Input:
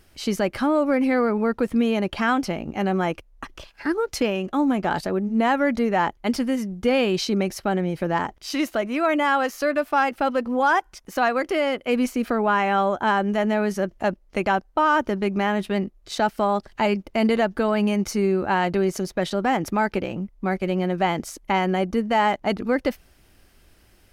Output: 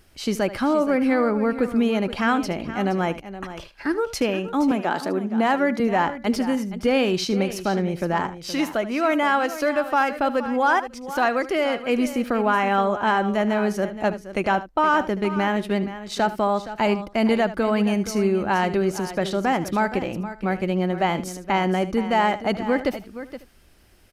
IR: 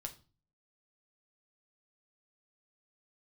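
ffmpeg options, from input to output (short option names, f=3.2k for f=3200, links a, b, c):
-filter_complex "[0:a]asplit=2[a][b];[b]aecho=0:1:471:0.224[c];[a][c]amix=inputs=2:normalize=0,aresample=32000,aresample=44100,asettb=1/sr,asplit=3[d][e][f];[d]atrim=end=4.714[g];[e]atrim=start=4.71:end=5.8,asetpts=PTS-STARTPTS,afade=t=in:d=0.004:c=qsin,afade=t=out:st=1.086:d=0.004:c=qsin,highpass=f=190:w=0.5412,highpass=f=190:w=1.3066[h];[f]atrim=start=5.796[i];[g][h]acrossfade=d=0.004:c1=hsin:c2=qsin[j];[j][i]acrossfade=d=0.004:c1=qsin:c2=hsin,asplit=2[k][l];[l]aecho=0:1:76:0.178[m];[k][m]amix=inputs=2:normalize=0"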